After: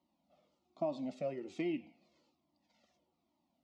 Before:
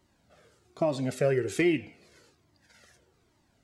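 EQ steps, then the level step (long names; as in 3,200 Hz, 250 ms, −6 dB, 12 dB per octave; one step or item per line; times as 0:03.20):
high-pass filter 120 Hz 12 dB per octave
high-frequency loss of the air 180 metres
phaser with its sweep stopped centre 430 Hz, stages 6
−7.0 dB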